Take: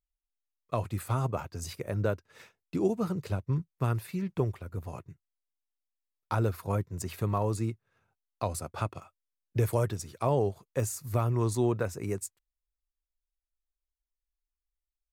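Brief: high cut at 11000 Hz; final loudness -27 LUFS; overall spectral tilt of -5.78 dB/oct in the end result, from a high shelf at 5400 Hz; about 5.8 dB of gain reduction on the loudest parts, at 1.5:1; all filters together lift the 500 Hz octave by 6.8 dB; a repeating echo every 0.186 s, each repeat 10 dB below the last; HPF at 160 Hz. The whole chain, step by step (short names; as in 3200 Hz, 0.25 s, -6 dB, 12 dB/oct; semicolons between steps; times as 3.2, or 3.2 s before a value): HPF 160 Hz; LPF 11000 Hz; bell 500 Hz +8.5 dB; high shelf 5400 Hz +4 dB; compressor 1.5:1, threshold -34 dBFS; feedback echo 0.186 s, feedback 32%, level -10 dB; gain +6.5 dB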